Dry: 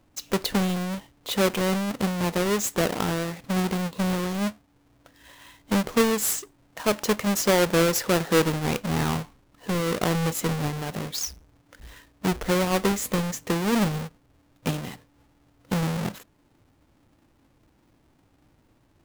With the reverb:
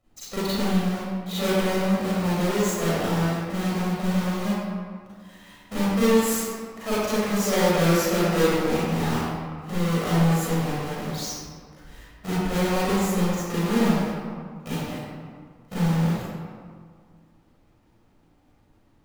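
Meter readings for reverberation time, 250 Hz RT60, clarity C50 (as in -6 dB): 1.9 s, 2.0 s, -5.0 dB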